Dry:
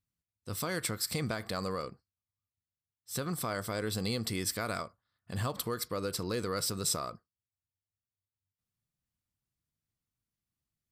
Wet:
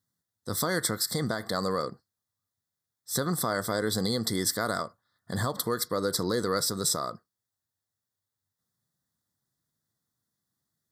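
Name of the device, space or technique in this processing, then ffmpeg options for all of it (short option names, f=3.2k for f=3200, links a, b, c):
PA system with an anti-feedback notch: -af "highpass=130,asuperstop=centerf=2600:order=12:qfactor=2.1,alimiter=limit=-23dB:level=0:latency=1:release=481,volume=8dB"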